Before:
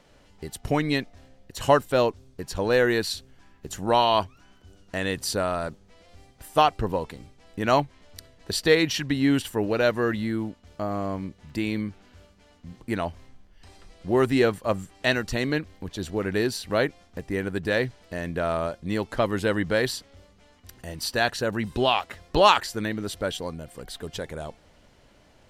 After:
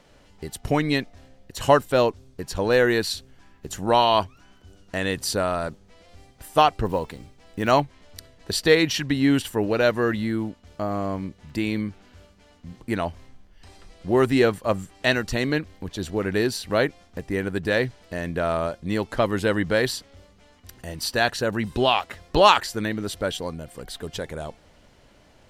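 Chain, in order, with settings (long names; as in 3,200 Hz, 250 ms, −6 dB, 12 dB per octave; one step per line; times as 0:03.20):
0:06.85–0:07.72: one scale factor per block 7 bits
level +2 dB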